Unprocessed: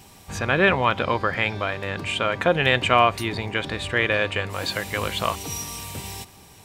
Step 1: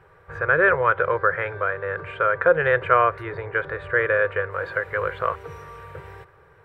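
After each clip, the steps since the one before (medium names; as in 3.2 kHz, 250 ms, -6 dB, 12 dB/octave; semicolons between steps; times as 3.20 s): FFT filter 160 Hz 0 dB, 230 Hz -28 dB, 340 Hz -1 dB, 490 Hz +12 dB, 750 Hz -4 dB, 1.5 kHz +13 dB, 2.7 kHz -11 dB, 6.3 kHz -27 dB, 15 kHz -24 dB; trim -5 dB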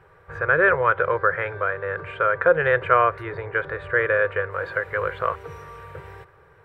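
no audible change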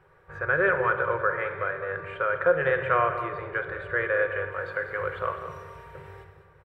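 on a send: delay 199 ms -11.5 dB; on the sum: simulated room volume 2300 m³, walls mixed, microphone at 1 m; trim -6 dB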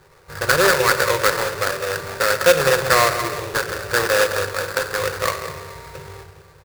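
sample-rate reducer 3.1 kHz, jitter 20%; trim +7.5 dB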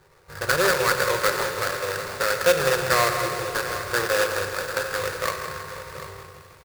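feedback comb 180 Hz, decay 1.8 s, mix 60%; delay 743 ms -13.5 dB; bit-crushed delay 161 ms, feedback 80%, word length 8-bit, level -12.5 dB; trim +2.5 dB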